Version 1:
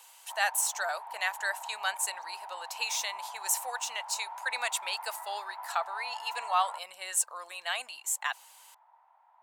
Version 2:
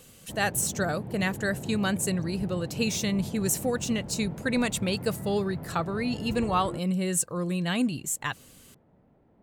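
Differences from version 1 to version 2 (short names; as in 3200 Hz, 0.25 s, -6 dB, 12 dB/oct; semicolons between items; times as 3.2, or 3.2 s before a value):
background: remove resonant high-pass 940 Hz, resonance Q 9; master: remove Chebyshev high-pass 700 Hz, order 4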